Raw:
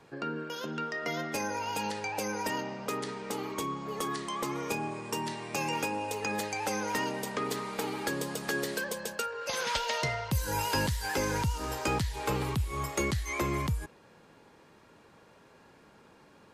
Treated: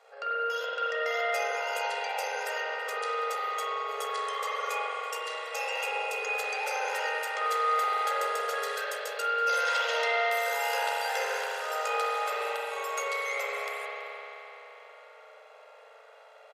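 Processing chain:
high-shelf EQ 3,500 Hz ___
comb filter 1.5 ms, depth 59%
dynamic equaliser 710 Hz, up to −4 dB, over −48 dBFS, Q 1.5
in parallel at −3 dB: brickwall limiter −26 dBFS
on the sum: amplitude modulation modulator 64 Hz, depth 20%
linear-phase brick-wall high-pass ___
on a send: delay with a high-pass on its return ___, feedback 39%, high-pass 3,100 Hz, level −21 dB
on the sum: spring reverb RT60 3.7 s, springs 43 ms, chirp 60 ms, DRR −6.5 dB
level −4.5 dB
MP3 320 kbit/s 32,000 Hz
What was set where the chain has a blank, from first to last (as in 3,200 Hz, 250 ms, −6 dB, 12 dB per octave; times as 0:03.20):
−2.5 dB, 420 Hz, 328 ms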